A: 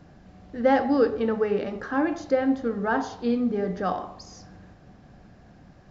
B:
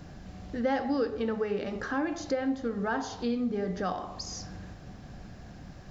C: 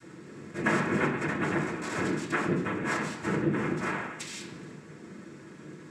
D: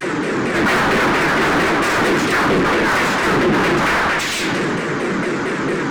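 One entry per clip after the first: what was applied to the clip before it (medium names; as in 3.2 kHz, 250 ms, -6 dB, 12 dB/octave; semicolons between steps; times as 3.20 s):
treble shelf 2.9 kHz +9 dB; compression 2:1, threshold -37 dBFS, peak gain reduction 12 dB; bass shelf 120 Hz +6.5 dB; trim +2 dB
noise-vocoded speech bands 3; reverberation RT60 0.65 s, pre-delay 3 ms, DRR -6.5 dB; trim -6.5 dB
overdrive pedal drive 38 dB, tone 2 kHz, clips at -13 dBFS; vibrato with a chosen wave saw down 4.4 Hz, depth 250 cents; trim +5 dB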